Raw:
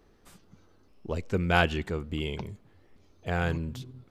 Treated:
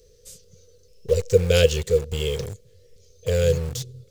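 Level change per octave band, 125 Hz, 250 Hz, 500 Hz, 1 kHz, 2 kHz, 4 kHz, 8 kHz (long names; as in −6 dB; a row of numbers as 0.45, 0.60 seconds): +7.0, −0.5, +13.0, −11.0, −2.5, +8.0, +20.0 decibels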